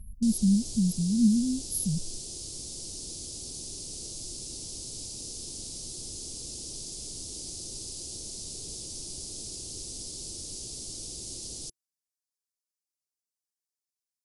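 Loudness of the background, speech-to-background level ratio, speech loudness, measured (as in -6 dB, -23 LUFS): -37.0 LUFS, 10.5 dB, -26.5 LUFS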